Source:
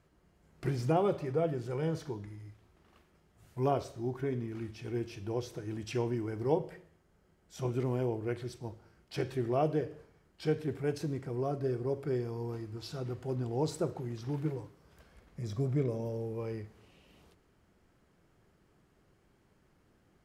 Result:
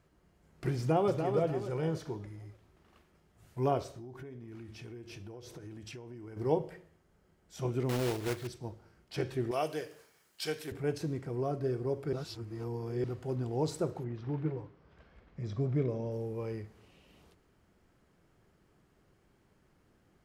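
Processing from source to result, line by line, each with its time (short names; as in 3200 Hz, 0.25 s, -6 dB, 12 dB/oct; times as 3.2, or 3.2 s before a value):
0.78–1.31 echo throw 0.29 s, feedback 40%, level -6 dB
3.95–6.37 compressor 16:1, threshold -42 dBFS
7.89–8.49 block floating point 3-bit
9.51–10.72 tilt +4.5 dB/oct
12.13–13.04 reverse
14.03–16.1 LPF 2300 Hz -> 5200 Hz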